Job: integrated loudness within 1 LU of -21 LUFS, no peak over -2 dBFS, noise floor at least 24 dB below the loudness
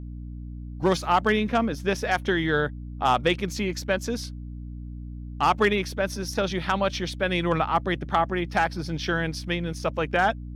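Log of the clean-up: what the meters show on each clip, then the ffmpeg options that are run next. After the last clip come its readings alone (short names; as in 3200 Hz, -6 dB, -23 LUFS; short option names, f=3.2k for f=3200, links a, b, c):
hum 60 Hz; harmonics up to 300 Hz; hum level -34 dBFS; loudness -25.5 LUFS; peak -10.0 dBFS; loudness target -21.0 LUFS
-> -af "bandreject=f=60:t=h:w=6,bandreject=f=120:t=h:w=6,bandreject=f=180:t=h:w=6,bandreject=f=240:t=h:w=6,bandreject=f=300:t=h:w=6"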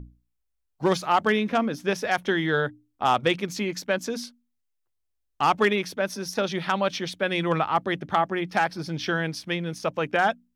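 hum none; loudness -25.5 LUFS; peak -10.5 dBFS; loudness target -21.0 LUFS
-> -af "volume=4.5dB"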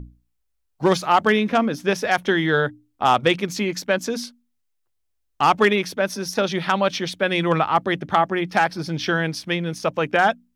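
loudness -21.0 LUFS; peak -6.0 dBFS; noise floor -72 dBFS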